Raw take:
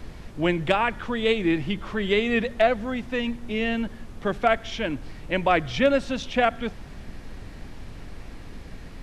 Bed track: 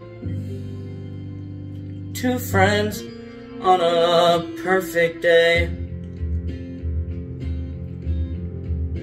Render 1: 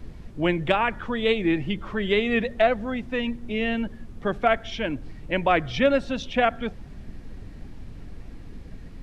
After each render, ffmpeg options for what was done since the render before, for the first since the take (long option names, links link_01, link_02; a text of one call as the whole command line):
ffmpeg -i in.wav -af "afftdn=noise_reduction=8:noise_floor=-41" out.wav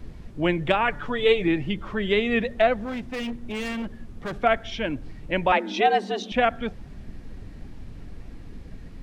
ffmpeg -i in.wav -filter_complex "[0:a]asettb=1/sr,asplit=3[link_01][link_02][link_03];[link_01]atrim=end=0.854[link_04];[link_02]atrim=start=0.85:end=1.48,asetpts=PTS-STARTPTS,afade=type=in:duration=0.004:curve=qsin,afade=type=out:start_time=0.626:duration=0.004:curve=qsin,aecho=1:1:6.9:0.65,atrim=end_sample=27783[link_05];[link_03]atrim=start=1.476[link_06];[link_04][link_05]acrossfade=duration=0.004:curve1=hsin:curve2=qsin[link_07];[link_07][link_06]acrossfade=duration=0.004:curve1=qsin:curve2=hsin,asettb=1/sr,asplit=3[link_08][link_09][link_10];[link_08]atrim=end=2.784[link_11];[link_09]atrim=start=2.78:end=4.42,asetpts=PTS-STARTPTS,afade=type=in:duration=0.004:curve=qsin,afade=type=out:start_time=1.636:duration=0.004:curve=qsin,asoftclip=type=hard:threshold=-27.5dB[link_12];[link_10]atrim=start=4.416[link_13];[link_11][link_12]acrossfade=duration=0.004:curve1=hsin:curve2=qsin[link_14];[link_14][link_13]acrossfade=duration=0.004:curve1=qsin:curve2=hsin,asettb=1/sr,asplit=3[link_15][link_16][link_17];[link_15]atrim=end=5.524[link_18];[link_16]atrim=start=5.52:end=6.32,asetpts=PTS-STARTPTS,afade=type=in:duration=0.004:curve=qsin,afade=type=out:start_time=0.796:duration=0.004:curve=qsin,afreqshift=190[link_19];[link_17]atrim=start=6.316[link_20];[link_18][link_19]acrossfade=duration=0.004:curve1=hsin:curve2=qsin[link_21];[link_21][link_20]acrossfade=duration=0.004:curve1=qsin:curve2=hsin" out.wav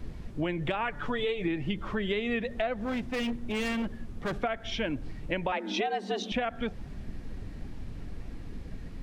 ffmpeg -i in.wav -af "alimiter=limit=-14dB:level=0:latency=1:release=181,acompressor=threshold=-27dB:ratio=6" out.wav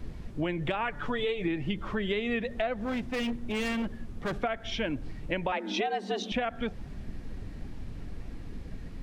ffmpeg -i in.wav -af anull out.wav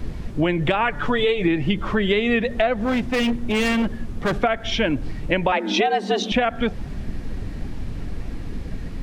ffmpeg -i in.wav -af "volume=10.5dB" out.wav